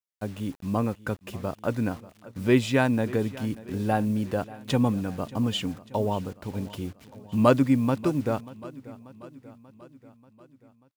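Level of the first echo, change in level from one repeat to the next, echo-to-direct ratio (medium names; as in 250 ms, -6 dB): -19.0 dB, -4.5 dB, -17.0 dB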